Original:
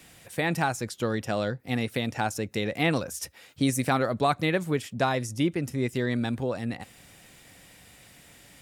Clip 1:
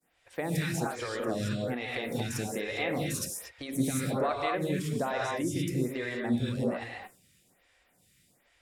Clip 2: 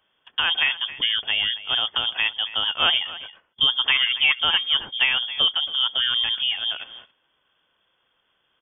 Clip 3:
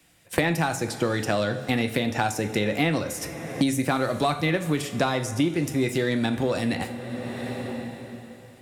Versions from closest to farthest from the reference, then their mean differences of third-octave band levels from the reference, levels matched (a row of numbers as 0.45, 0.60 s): 3, 1, 2; 7.0, 9.5, 17.5 dB